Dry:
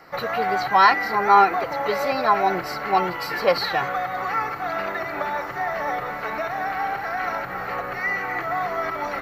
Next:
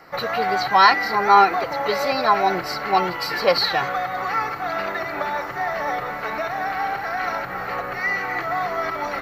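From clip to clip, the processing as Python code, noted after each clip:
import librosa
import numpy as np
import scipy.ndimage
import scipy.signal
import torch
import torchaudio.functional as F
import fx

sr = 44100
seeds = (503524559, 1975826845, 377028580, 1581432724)

y = fx.dynamic_eq(x, sr, hz=4500.0, q=1.4, threshold_db=-42.0, ratio=4.0, max_db=6)
y = y * librosa.db_to_amplitude(1.0)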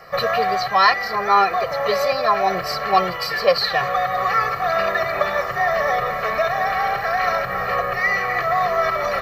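y = x + 0.79 * np.pad(x, (int(1.7 * sr / 1000.0), 0))[:len(x)]
y = fx.rider(y, sr, range_db=3, speed_s=0.5)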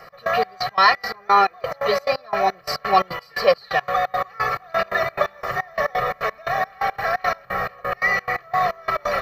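y = fx.step_gate(x, sr, bpm=174, pattern='x..xx..x.xx.', floor_db=-24.0, edge_ms=4.5)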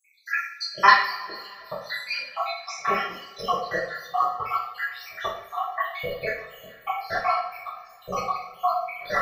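y = fx.spec_dropout(x, sr, seeds[0], share_pct=80)
y = fx.rev_double_slope(y, sr, seeds[1], early_s=0.54, late_s=2.9, knee_db=-22, drr_db=-8.5)
y = y * librosa.db_to_amplitude(-6.0)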